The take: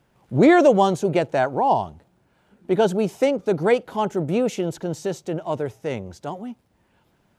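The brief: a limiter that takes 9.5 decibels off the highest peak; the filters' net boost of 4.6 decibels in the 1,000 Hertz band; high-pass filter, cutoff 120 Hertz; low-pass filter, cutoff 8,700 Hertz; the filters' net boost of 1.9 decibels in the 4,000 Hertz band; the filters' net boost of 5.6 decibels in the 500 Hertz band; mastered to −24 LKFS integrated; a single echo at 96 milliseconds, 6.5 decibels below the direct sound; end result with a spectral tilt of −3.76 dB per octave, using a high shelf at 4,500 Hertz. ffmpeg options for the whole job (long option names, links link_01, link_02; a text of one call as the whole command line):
ffmpeg -i in.wav -af "highpass=120,lowpass=8700,equalizer=frequency=500:width_type=o:gain=6,equalizer=frequency=1000:width_type=o:gain=3.5,equalizer=frequency=4000:width_type=o:gain=5,highshelf=frequency=4500:gain=-5.5,alimiter=limit=-9dB:level=0:latency=1,aecho=1:1:96:0.473,volume=-4.5dB" out.wav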